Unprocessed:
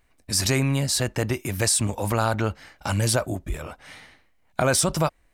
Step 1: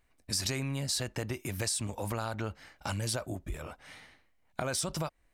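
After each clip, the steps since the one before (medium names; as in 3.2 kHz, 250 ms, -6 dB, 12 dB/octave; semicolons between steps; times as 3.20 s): compression 4:1, threshold -25 dBFS, peak gain reduction 7.5 dB; dynamic bell 4.2 kHz, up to +4 dB, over -39 dBFS, Q 0.81; trim -6.5 dB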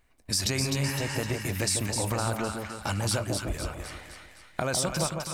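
spectral replace 0.86–1.13 s, 810–10000 Hz after; two-band feedback delay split 1.1 kHz, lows 151 ms, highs 256 ms, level -4.5 dB; trim +4.5 dB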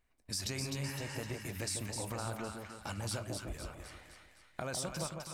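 flange 1.4 Hz, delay 3.8 ms, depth 5.6 ms, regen -86%; trim -6 dB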